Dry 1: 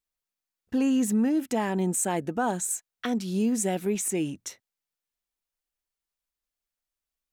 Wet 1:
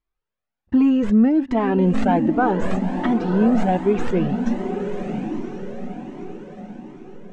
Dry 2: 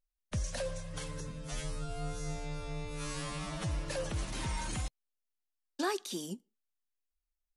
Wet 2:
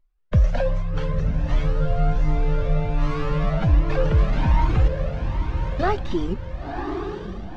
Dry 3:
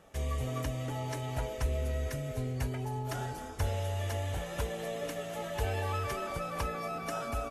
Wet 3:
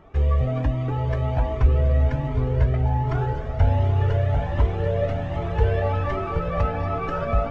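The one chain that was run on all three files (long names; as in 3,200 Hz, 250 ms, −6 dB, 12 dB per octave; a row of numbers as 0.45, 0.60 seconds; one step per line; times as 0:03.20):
stylus tracing distortion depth 0.093 ms
head-to-tape spacing loss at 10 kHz 39 dB
on a send: feedback delay with all-pass diffusion 1,013 ms, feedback 45%, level −6.5 dB
on the sum: flanger whose copies keep moving one way rising 1.3 Hz
normalise the peak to −6 dBFS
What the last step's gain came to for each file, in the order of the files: +15.5, +20.5, +16.5 decibels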